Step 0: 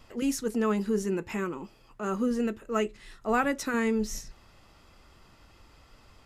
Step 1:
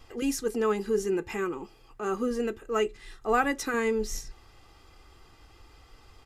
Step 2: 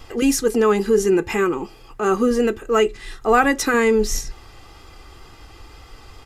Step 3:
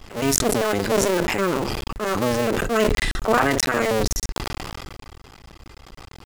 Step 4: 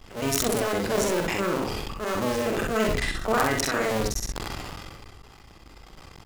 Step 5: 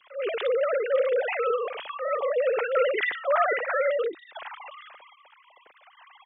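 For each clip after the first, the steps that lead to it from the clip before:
comb 2.5 ms, depth 52%
in parallel at -1 dB: peak limiter -21.5 dBFS, peak gain reduction 8 dB; on the sum: wow and flutter 19 cents; trim +6 dB
cycle switcher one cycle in 2, muted; decay stretcher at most 20 dB/s; trim -2 dB
integer overflow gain 6 dB; multi-tap echo 45/64 ms -7/-4.5 dB; trim -6 dB
formants replaced by sine waves

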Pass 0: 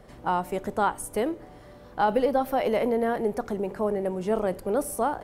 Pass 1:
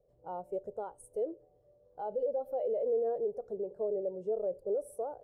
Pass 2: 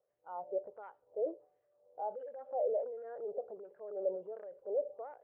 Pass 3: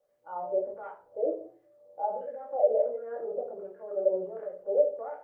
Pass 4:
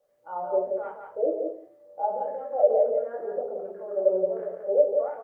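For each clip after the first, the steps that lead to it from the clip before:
graphic EQ 125/250/500/1000/2000/8000 Hz +4/-8/+12/-4/-7/+4 dB; peak limiter -16 dBFS, peak gain reduction 11 dB; spectral contrast expander 1.5:1; trim -8 dB
transient shaper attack 0 dB, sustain +6 dB; wah-wah 1.4 Hz 600–1900 Hz, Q 2.4; inverse Chebyshev low-pass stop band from 6.3 kHz; trim +3 dB
reverberation RT60 0.40 s, pre-delay 3 ms, DRR -2.5 dB; trim +3 dB
delay 174 ms -5 dB; trim +3.5 dB

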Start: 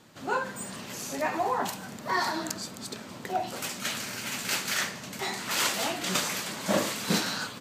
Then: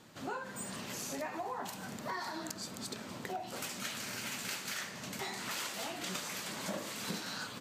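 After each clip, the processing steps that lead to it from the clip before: compression 6:1, threshold -35 dBFS, peak gain reduction 13.5 dB; trim -2 dB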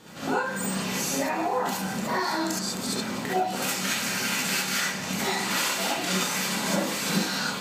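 gated-style reverb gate 90 ms rising, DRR -6.5 dB; trim +6 dB

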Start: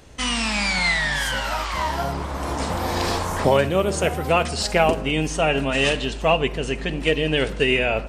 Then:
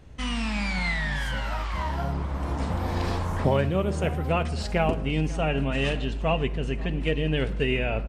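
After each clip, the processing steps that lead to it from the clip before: tone controls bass +9 dB, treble -8 dB; delay 538 ms -20 dB; trim -7.5 dB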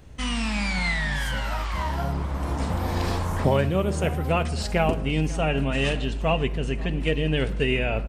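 treble shelf 8 kHz +9.5 dB; trim +1.5 dB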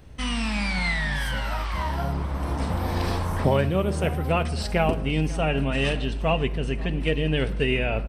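band-stop 6.9 kHz, Q 5

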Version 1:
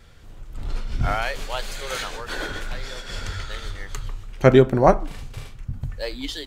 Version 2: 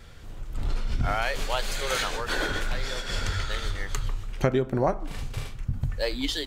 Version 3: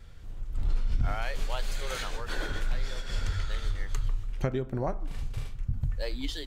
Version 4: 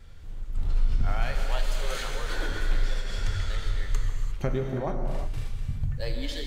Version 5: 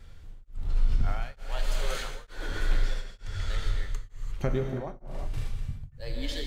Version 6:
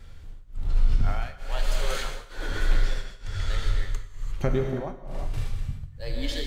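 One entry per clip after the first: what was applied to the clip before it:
compression 8:1, threshold -23 dBFS, peak gain reduction 15 dB; trim +2.5 dB
bass shelf 120 Hz +10 dB; trim -8.5 dB
gated-style reverb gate 380 ms flat, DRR 2.5 dB
tremolo of two beating tones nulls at 1.1 Hz
gated-style reverb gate 220 ms flat, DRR 12 dB; trim +3 dB

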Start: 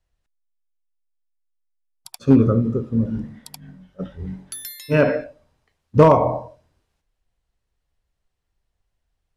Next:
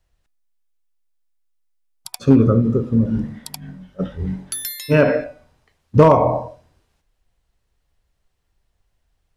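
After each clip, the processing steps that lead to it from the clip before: de-hum 247.2 Hz, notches 10; compression 1.5:1, threshold -23 dBFS, peak gain reduction 6 dB; trim +6.5 dB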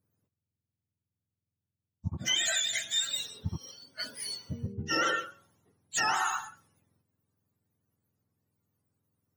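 spectrum inverted on a logarithmic axis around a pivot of 910 Hz; peak limiter -12 dBFS, peak gain reduction 9.5 dB; trim -7 dB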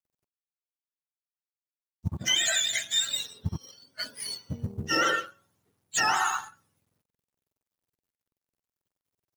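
companding laws mixed up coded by A; trim +4.5 dB

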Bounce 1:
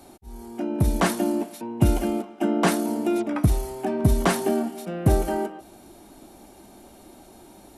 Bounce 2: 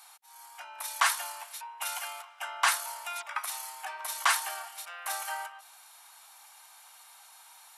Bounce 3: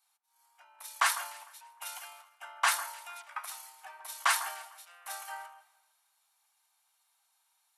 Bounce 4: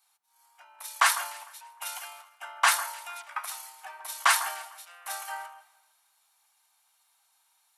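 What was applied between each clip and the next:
steep high-pass 950 Hz 36 dB/octave; trim +2 dB
echo whose repeats swap between lows and highs 151 ms, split 1.9 kHz, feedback 57%, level -12 dB; three bands expanded up and down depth 70%; trim -7.5 dB
short-mantissa float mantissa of 6-bit; trim +5 dB

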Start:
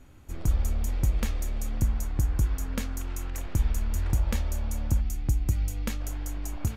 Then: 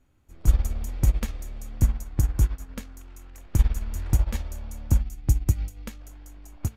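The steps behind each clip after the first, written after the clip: upward expansion 2.5:1, over -32 dBFS; trim +8 dB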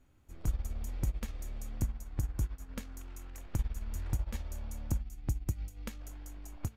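compression 2:1, threshold -37 dBFS, peak gain reduction 14 dB; trim -1 dB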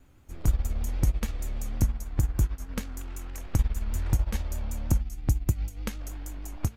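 vibrato 6.4 Hz 74 cents; trim +8.5 dB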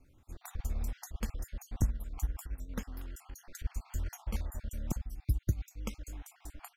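random holes in the spectrogram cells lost 45%; trim -5 dB

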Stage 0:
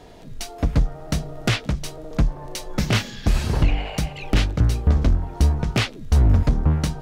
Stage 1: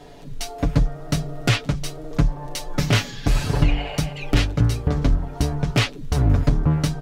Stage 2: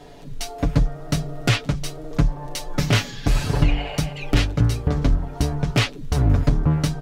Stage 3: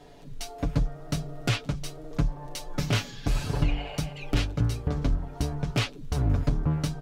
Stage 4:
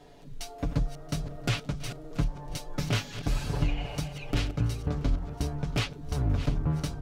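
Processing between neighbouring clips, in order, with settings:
comb 7 ms
no audible change
dynamic bell 1.9 kHz, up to -4 dB, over -47 dBFS, Q 6.3; trim -7 dB
backward echo that repeats 340 ms, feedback 42%, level -12 dB; trim -2.5 dB

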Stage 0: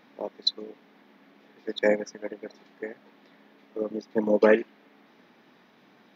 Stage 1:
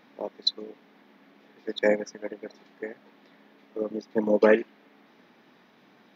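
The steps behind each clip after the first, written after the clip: no audible change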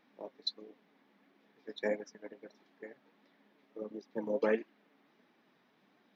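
flange 1.5 Hz, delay 2.4 ms, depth 5.7 ms, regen +56%; trim -7.5 dB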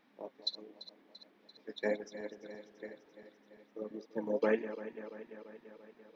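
backward echo that repeats 170 ms, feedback 78%, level -13.5 dB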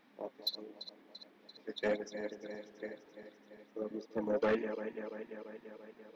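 saturation -28.5 dBFS, distortion -11 dB; trim +3 dB

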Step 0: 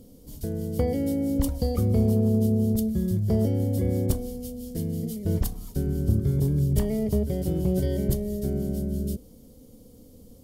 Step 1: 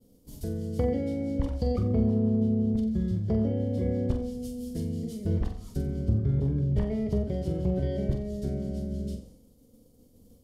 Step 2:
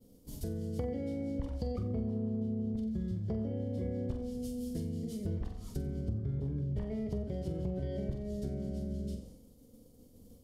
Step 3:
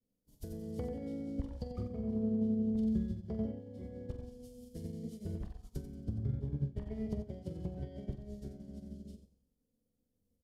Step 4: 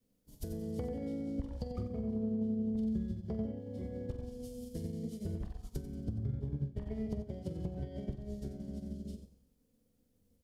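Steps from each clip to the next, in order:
expander -43 dBFS; low-pass that closes with the level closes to 2.4 kHz, closed at -19 dBFS; on a send: flutter echo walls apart 7.7 m, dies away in 0.4 s; on the sum: trim -3 dB
compression 3:1, threshold -35 dBFS, peak gain reduction 11.5 dB
feedback delay 91 ms, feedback 43%, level -6 dB; upward expansion 2.5:1, over -47 dBFS; trim +1 dB
compression 2:1, threshold -48 dBFS, peak gain reduction 11 dB; trim +8 dB

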